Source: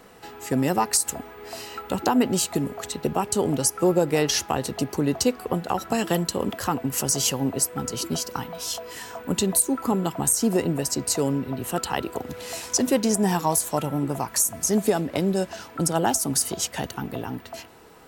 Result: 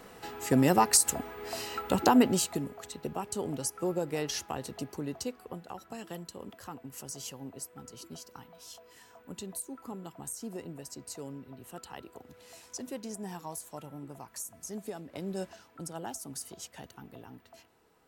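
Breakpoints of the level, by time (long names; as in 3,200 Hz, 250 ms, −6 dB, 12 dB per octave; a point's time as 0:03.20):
0:02.16 −1 dB
0:02.75 −11.5 dB
0:04.75 −11.5 dB
0:05.86 −18.5 dB
0:15.04 −18.5 dB
0:15.45 −10.5 dB
0:15.61 −17.5 dB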